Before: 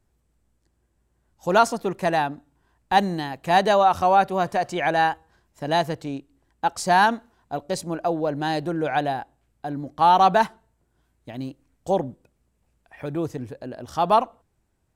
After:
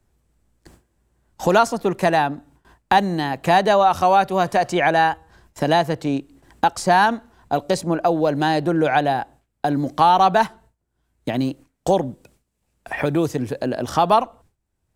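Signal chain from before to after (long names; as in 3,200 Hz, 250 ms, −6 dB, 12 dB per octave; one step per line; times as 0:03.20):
noise gate with hold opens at −53 dBFS
multiband upward and downward compressor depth 70%
level +4 dB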